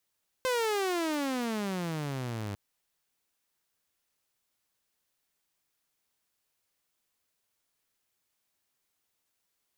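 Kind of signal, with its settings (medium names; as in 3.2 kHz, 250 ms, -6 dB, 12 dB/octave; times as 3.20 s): gliding synth tone saw, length 2.10 s, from 522 Hz, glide -29 st, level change -8 dB, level -23.5 dB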